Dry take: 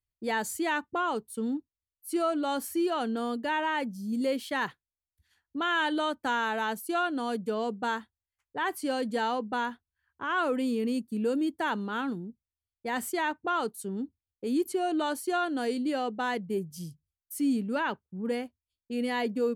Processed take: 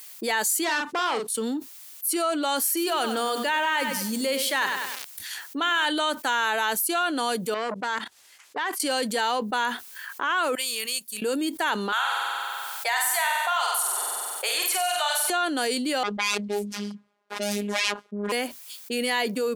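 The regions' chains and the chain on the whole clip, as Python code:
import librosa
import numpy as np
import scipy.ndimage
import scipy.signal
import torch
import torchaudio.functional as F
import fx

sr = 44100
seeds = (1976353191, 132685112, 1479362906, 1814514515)

y = fx.chain(x, sr, fx.clip_hard(threshold_db=-28.5),
    fx.air_absorb(metres=56.0),
    fx.doubler(ms=39.0, db=-8), at=(0.64, 1.35))
y = fx.chain(y, sr, fx.hum_notches(base_hz=60, count=7),
    fx.echo_crushed(ms=98, feedback_pct=35, bits=9, wet_db=-11.5), at=(2.67, 5.86))
y = fx.chain(y, sr, fx.level_steps(step_db=19),
    fx.air_absorb(metres=51.0),
    fx.transformer_sat(knee_hz=810.0), at=(7.54, 8.8))
y = fx.chain(y, sr, fx.tone_stack(knobs='10-0-10'),
    fx.upward_expand(threshold_db=-57.0, expansion=2.5), at=(10.55, 11.22))
y = fx.chain(y, sr, fx.ellip_highpass(hz=670.0, order=4, stop_db=80),
    fx.room_flutter(wall_m=8.1, rt60_s=0.81),
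    fx.band_squash(depth_pct=70), at=(11.92, 15.3))
y = fx.chain(y, sr, fx.self_delay(depth_ms=0.36),
    fx.env_lowpass(base_hz=630.0, full_db=-26.0),
    fx.robotise(hz=205.0), at=(16.03, 18.32))
y = scipy.signal.sosfilt(scipy.signal.butter(2, 270.0, 'highpass', fs=sr, output='sos'), y)
y = fx.tilt_eq(y, sr, slope=3.0)
y = fx.env_flatten(y, sr, amount_pct=70)
y = y * librosa.db_to_amplitude(1.0)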